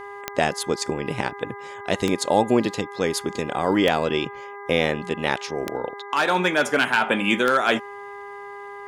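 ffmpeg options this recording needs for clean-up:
-af "adeclick=t=4,bandreject=f=404.5:t=h:w=4,bandreject=f=809:t=h:w=4,bandreject=f=1213.5:t=h:w=4,bandreject=f=1618:t=h:w=4,bandreject=f=2022.5:t=h:w=4,bandreject=f=1000:w=30"

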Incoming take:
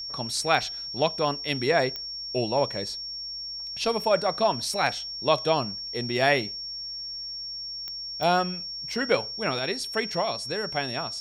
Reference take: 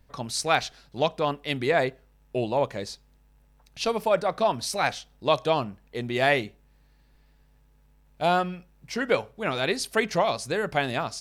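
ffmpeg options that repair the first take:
-af "adeclick=t=4,bandreject=f=5500:w=30,asetnsamples=n=441:p=0,asendcmd='9.59 volume volume 4dB',volume=1"

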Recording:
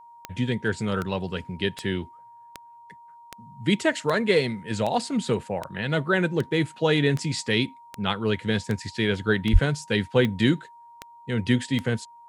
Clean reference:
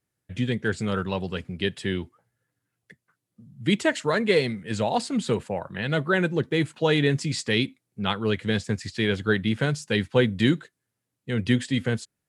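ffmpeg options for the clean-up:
-filter_complex "[0:a]adeclick=t=4,bandreject=f=940:w=30,asplit=3[s0][s1][s2];[s0]afade=t=out:st=9.52:d=0.02[s3];[s1]highpass=f=140:w=0.5412,highpass=f=140:w=1.3066,afade=t=in:st=9.52:d=0.02,afade=t=out:st=9.64:d=0.02[s4];[s2]afade=t=in:st=9.64:d=0.02[s5];[s3][s4][s5]amix=inputs=3:normalize=0"

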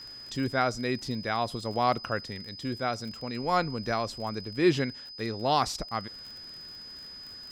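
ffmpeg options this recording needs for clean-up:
-af "adeclick=t=4,bandreject=f=5000:w=30"

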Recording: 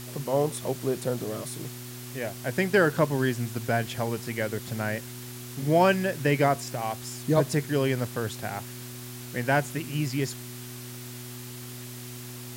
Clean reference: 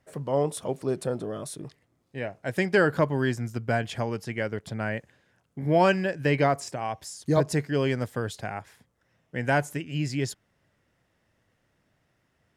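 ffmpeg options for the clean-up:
-af "bandreject=f=122.6:t=h:w=4,bandreject=f=245.2:t=h:w=4,bandreject=f=367.8:t=h:w=4,afwtdn=0.0071"

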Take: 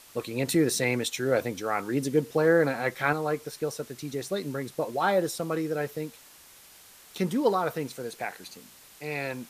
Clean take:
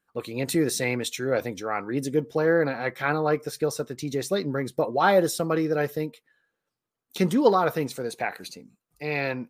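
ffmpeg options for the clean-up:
-af "afwtdn=0.0028,asetnsamples=n=441:p=0,asendcmd='3.13 volume volume 5dB',volume=1"

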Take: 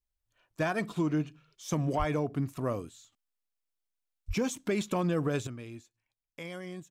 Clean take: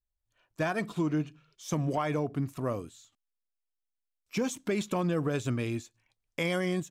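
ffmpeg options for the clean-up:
-filter_complex "[0:a]asplit=3[s0][s1][s2];[s0]afade=t=out:st=1.98:d=0.02[s3];[s1]highpass=f=140:w=0.5412,highpass=f=140:w=1.3066,afade=t=in:st=1.98:d=0.02,afade=t=out:st=2.1:d=0.02[s4];[s2]afade=t=in:st=2.1:d=0.02[s5];[s3][s4][s5]amix=inputs=3:normalize=0,asplit=3[s6][s7][s8];[s6]afade=t=out:st=4.27:d=0.02[s9];[s7]highpass=f=140:w=0.5412,highpass=f=140:w=1.3066,afade=t=in:st=4.27:d=0.02,afade=t=out:st=4.39:d=0.02[s10];[s8]afade=t=in:st=4.39:d=0.02[s11];[s9][s10][s11]amix=inputs=3:normalize=0,asetnsamples=n=441:p=0,asendcmd='5.47 volume volume 11.5dB',volume=1"

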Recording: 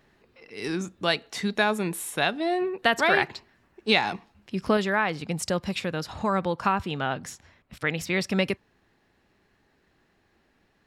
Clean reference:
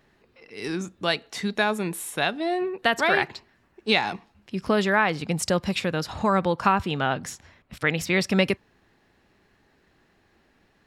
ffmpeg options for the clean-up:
-af "asetnsamples=n=441:p=0,asendcmd='4.77 volume volume 3.5dB',volume=1"

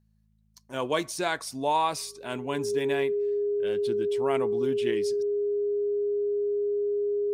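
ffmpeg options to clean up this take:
-af "bandreject=f=53.6:t=h:w=4,bandreject=f=107.2:t=h:w=4,bandreject=f=160.8:t=h:w=4,bandreject=f=214.4:t=h:w=4,bandreject=f=410:w=30"

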